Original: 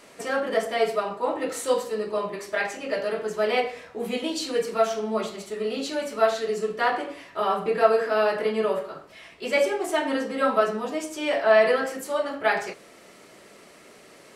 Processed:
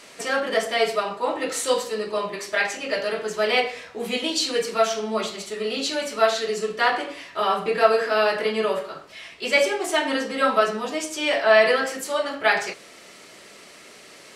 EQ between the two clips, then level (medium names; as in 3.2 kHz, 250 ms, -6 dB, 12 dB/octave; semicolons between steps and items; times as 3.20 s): peaking EQ 4.4 kHz +8.5 dB 2.9 oct; 0.0 dB